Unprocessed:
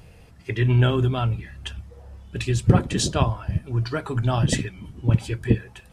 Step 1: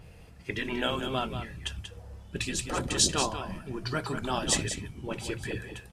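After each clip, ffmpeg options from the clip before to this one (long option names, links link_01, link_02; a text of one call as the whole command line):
ffmpeg -i in.wav -af "afftfilt=real='re*lt(hypot(re,im),0.398)':imag='im*lt(hypot(re,im),0.398)':win_size=1024:overlap=0.75,aecho=1:1:186:0.355,adynamicequalizer=threshold=0.00708:dfrequency=3800:dqfactor=0.7:tfrequency=3800:tqfactor=0.7:attack=5:release=100:ratio=0.375:range=3:mode=boostabove:tftype=highshelf,volume=-2.5dB" out.wav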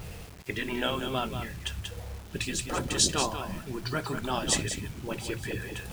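ffmpeg -i in.wav -af "areverse,acompressor=mode=upward:threshold=-31dB:ratio=2.5,areverse,acrusher=bits=7:mix=0:aa=0.000001" out.wav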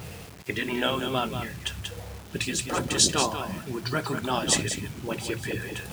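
ffmpeg -i in.wav -af "highpass=88,volume=3.5dB" out.wav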